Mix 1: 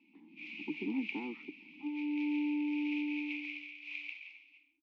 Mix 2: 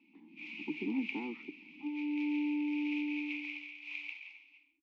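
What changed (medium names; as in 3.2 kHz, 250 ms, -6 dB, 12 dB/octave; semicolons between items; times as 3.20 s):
first sound: remove band-pass filter 3.2 kHz, Q 0.55; reverb: on, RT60 0.60 s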